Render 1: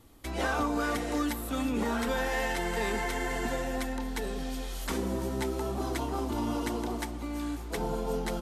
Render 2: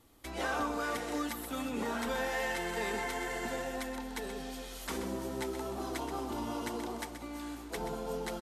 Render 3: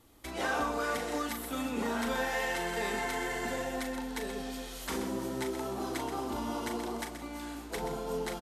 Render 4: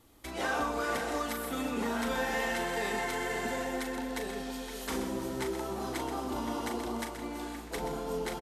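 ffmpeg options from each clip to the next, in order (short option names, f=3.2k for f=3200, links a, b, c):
-filter_complex "[0:a]lowshelf=f=230:g=-6.5,asplit=2[a][b];[b]aecho=0:1:128:0.335[c];[a][c]amix=inputs=2:normalize=0,volume=-3.5dB"
-filter_complex "[0:a]asplit=2[a][b];[b]adelay=39,volume=-7.5dB[c];[a][c]amix=inputs=2:normalize=0,volume=1.5dB"
-filter_complex "[0:a]asplit=2[a][b];[b]adelay=519,volume=-7dB,highshelf=f=4k:g=-11.7[c];[a][c]amix=inputs=2:normalize=0"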